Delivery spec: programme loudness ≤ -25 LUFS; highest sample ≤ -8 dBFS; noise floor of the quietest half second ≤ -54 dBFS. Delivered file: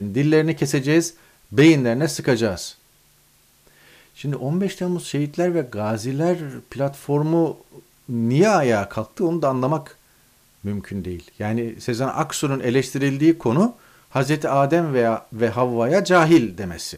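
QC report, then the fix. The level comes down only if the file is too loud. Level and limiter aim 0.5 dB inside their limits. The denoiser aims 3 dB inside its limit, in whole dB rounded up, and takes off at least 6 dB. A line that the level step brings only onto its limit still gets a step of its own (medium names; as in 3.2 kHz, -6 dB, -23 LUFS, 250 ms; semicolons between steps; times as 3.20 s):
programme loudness -20.5 LUFS: fail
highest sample -5.0 dBFS: fail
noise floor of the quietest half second -57 dBFS: pass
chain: trim -5 dB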